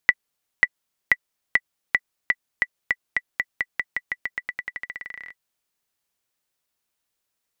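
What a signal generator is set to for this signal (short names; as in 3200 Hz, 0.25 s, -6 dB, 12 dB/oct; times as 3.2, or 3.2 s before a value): bouncing ball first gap 0.54 s, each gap 0.9, 1970 Hz, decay 47 ms -2 dBFS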